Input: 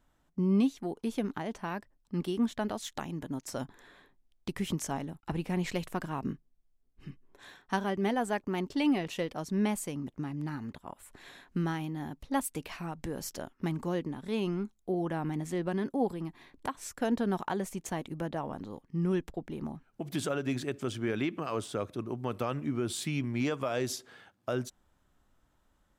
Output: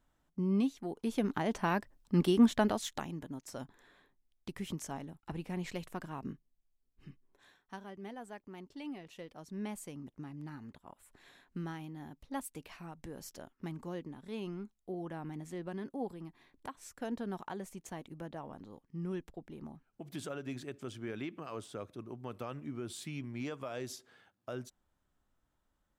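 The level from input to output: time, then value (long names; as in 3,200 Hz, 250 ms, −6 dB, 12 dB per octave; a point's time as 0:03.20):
0:00.83 −4.5 dB
0:01.59 +5 dB
0:02.58 +5 dB
0:03.34 −7 dB
0:07.08 −7 dB
0:07.77 −16 dB
0:09.02 −16 dB
0:09.88 −9 dB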